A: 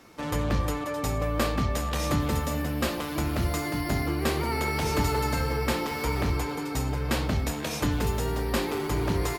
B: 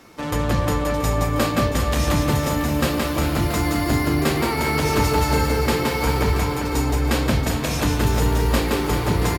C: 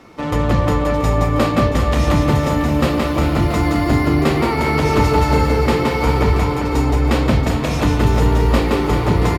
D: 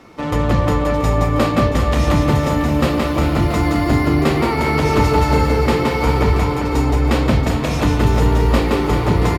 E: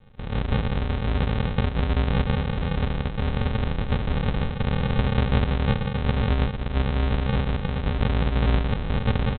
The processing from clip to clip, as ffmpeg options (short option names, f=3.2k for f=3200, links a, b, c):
-af "aecho=1:1:170|391|678.3|1052|1537:0.631|0.398|0.251|0.158|0.1,volume=5dB"
-af "lowpass=f=2.5k:p=1,bandreject=f=1.6k:w=14,volume=5dB"
-af anull
-filter_complex "[0:a]asplit=2[a][b];[b]adelay=15,volume=-12.5dB[c];[a][c]amix=inputs=2:normalize=0,aresample=8000,acrusher=samples=24:mix=1:aa=0.000001,aresample=44100,volume=-8dB"